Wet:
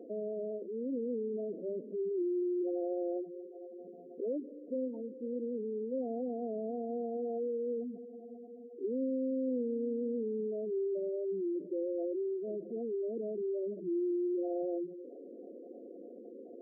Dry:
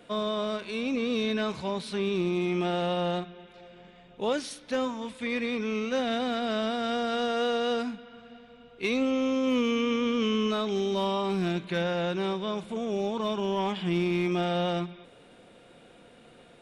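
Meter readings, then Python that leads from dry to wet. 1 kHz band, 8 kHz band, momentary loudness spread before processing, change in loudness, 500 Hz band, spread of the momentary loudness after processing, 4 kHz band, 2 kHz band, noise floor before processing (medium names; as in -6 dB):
-19.0 dB, under -30 dB, 6 LU, -7.5 dB, -5.0 dB, 16 LU, under -40 dB, under -40 dB, -54 dBFS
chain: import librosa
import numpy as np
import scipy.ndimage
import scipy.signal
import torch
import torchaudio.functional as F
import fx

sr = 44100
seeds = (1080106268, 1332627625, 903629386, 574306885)

y = fx.bin_compress(x, sr, power=0.6)
y = fx.ladder_bandpass(y, sr, hz=400.0, resonance_pct=40)
y = fx.spec_gate(y, sr, threshold_db=-10, keep='strong')
y = y * librosa.db_to_amplitude(2.5)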